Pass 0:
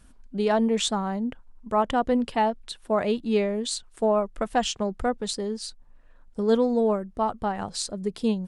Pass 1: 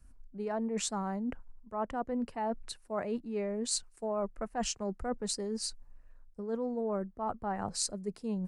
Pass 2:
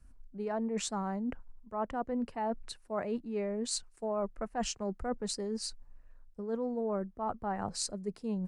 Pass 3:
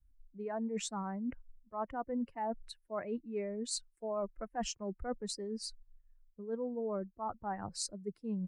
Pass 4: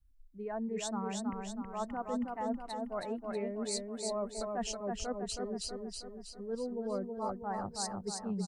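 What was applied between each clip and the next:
bell 3400 Hz -13.5 dB 0.44 oct; reverse; compressor 6:1, threshold -32 dBFS, peak gain reduction 15 dB; reverse; three-band expander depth 40%
high shelf 8200 Hz -6.5 dB
per-bin expansion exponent 1.5; gain -1 dB
feedback echo 0.321 s, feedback 53%, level -3.5 dB

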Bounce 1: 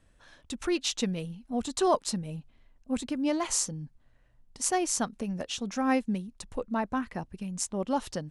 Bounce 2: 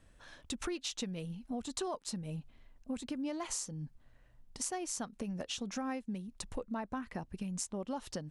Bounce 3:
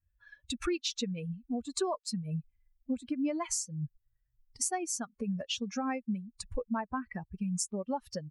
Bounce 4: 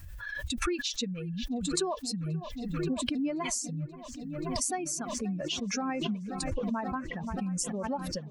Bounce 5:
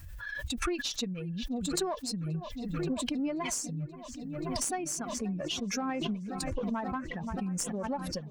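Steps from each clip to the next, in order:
compressor 6:1, threshold -37 dBFS, peak gain reduction 16.5 dB; gain +1 dB
per-bin expansion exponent 2; gain +8.5 dB
dark delay 0.53 s, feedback 84%, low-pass 2300 Hz, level -19 dB; backwards sustainer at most 26 dB/s
one diode to ground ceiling -24 dBFS

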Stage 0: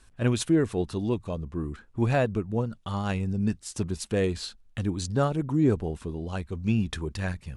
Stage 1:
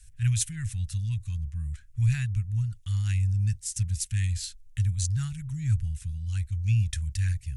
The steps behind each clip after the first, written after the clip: Chebyshev band-stop 110–1900 Hz, order 3; band shelf 2200 Hz -9.5 dB 2.5 oct; gain +7 dB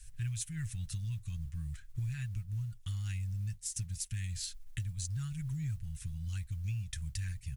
comb 6.3 ms, depth 40%; compressor 6:1, threshold -35 dBFS, peak gain reduction 15 dB; modulation noise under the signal 33 dB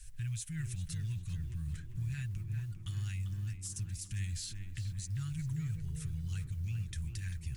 limiter -32.5 dBFS, peak gain reduction 9 dB; tape echo 0.396 s, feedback 78%, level -4 dB, low-pass 1900 Hz; gain +1 dB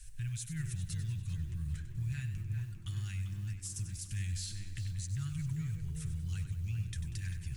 warbling echo 96 ms, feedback 48%, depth 54 cents, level -11 dB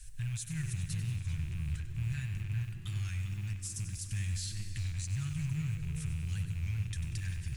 rattling part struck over -38 dBFS, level -43 dBFS; on a send at -11 dB: reverb RT60 2.5 s, pre-delay 0.105 s; on the sum: record warp 33 1/3 rpm, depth 100 cents; gain +1.5 dB

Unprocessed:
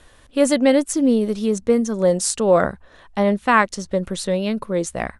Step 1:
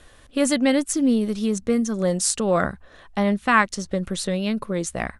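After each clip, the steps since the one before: notch 940 Hz, Q 12; dynamic EQ 510 Hz, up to -7 dB, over -29 dBFS, Q 1.1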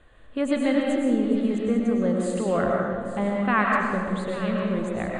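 running mean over 8 samples; echo with dull and thin repeats by turns 0.424 s, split 840 Hz, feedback 66%, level -11 dB; reverb RT60 1.5 s, pre-delay 75 ms, DRR -1.5 dB; gain -5 dB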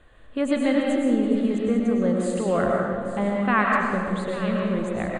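echo 0.334 s -18 dB; gain +1 dB

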